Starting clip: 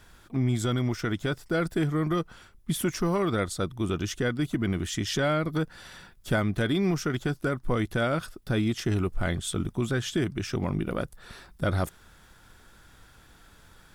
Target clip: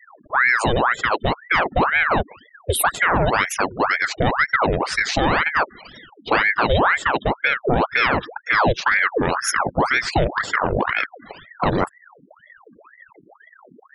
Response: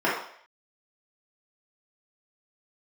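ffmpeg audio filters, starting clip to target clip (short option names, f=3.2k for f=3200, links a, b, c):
-filter_complex "[0:a]aemphasis=mode=reproduction:type=50kf,afftfilt=real='re*gte(hypot(re,im),0.00891)':imag='im*gte(hypot(re,im),0.00891)':win_size=1024:overlap=0.75,equalizer=f=250:t=o:w=1:g=7,equalizer=f=500:t=o:w=1:g=4,equalizer=f=4k:t=o:w=1:g=11,asplit=2[a][b];[b]alimiter=limit=-22dB:level=0:latency=1:release=167,volume=1.5dB[c];[a][c]amix=inputs=2:normalize=0,aexciter=amount=12.1:drive=7.6:freq=9.2k,aeval=exprs='val(0)*sin(2*PI*1100*n/s+1100*0.8/2*sin(2*PI*2*n/s))':c=same,volume=3dB"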